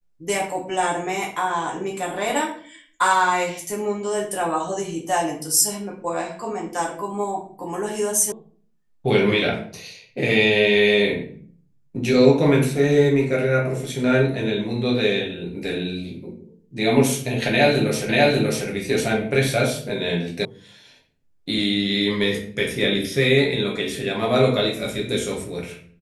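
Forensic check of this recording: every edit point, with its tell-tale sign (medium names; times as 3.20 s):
8.32 s: sound stops dead
18.09 s: repeat of the last 0.59 s
20.45 s: sound stops dead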